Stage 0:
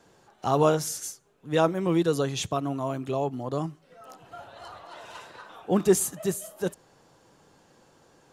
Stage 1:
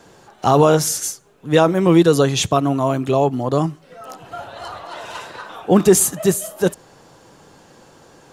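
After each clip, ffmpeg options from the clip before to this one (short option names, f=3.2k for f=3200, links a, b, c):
-af "alimiter=level_in=12.5dB:limit=-1dB:release=50:level=0:latency=1,volume=-1dB"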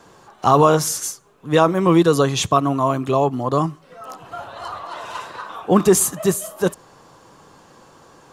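-af "equalizer=f=1.1k:t=o:w=0.38:g=8.5,volume=-2dB"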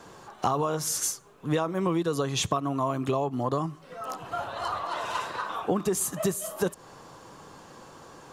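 -af "acompressor=threshold=-23dB:ratio=12"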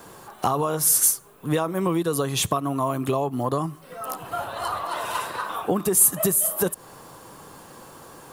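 -af "aexciter=amount=5.2:drive=5.1:freq=8.8k,volume=3dB"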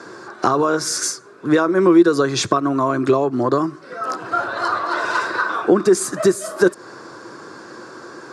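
-af "highpass=f=120:w=0.5412,highpass=f=120:w=1.3066,equalizer=f=160:t=q:w=4:g=-9,equalizer=f=350:t=q:w=4:g=10,equalizer=f=810:t=q:w=4:g=-6,equalizer=f=1.5k:t=q:w=4:g=10,equalizer=f=3k:t=q:w=4:g=-10,equalizer=f=4.9k:t=q:w=4:g=5,lowpass=f=6.5k:w=0.5412,lowpass=f=6.5k:w=1.3066,volume=6dB"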